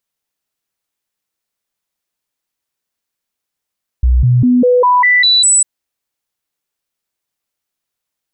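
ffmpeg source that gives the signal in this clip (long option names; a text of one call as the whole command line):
ffmpeg -f lavfi -i "aevalsrc='0.473*clip(min(mod(t,0.2),0.2-mod(t,0.2))/0.005,0,1)*sin(2*PI*61.9*pow(2,floor(t/0.2)/1)*mod(t,0.2))':duration=1.6:sample_rate=44100" out.wav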